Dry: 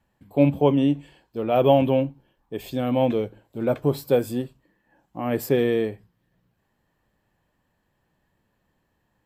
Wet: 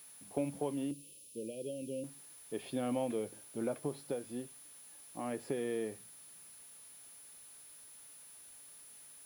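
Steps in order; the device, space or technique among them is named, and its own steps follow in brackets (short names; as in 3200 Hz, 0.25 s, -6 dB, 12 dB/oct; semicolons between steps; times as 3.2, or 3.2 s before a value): medium wave at night (BPF 170–3900 Hz; compressor, threshold -26 dBFS, peak gain reduction 13.5 dB; tremolo 0.32 Hz, depth 48%; whine 10000 Hz -48 dBFS; white noise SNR 20 dB); 0.91–2.04 Chebyshev band-stop 550–2600 Hz, order 4; gain -5.5 dB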